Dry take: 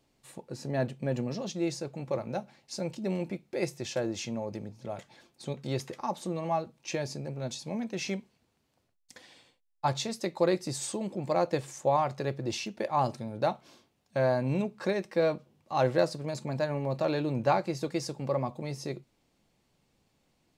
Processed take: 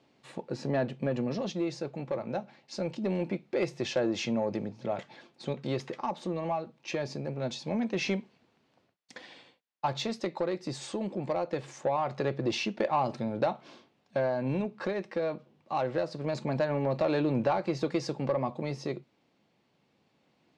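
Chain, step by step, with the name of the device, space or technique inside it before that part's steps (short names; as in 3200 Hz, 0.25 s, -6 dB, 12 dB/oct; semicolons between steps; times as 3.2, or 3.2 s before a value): AM radio (BPF 150–3900 Hz; compressor 6:1, threshold -29 dBFS, peak gain reduction 9.5 dB; soft clip -23.5 dBFS, distortion -21 dB; tremolo 0.23 Hz, depth 39%); gain +7 dB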